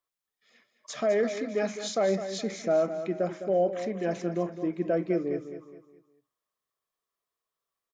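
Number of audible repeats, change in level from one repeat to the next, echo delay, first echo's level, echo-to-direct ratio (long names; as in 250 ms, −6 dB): 3, −8.5 dB, 208 ms, −10.5 dB, −10.0 dB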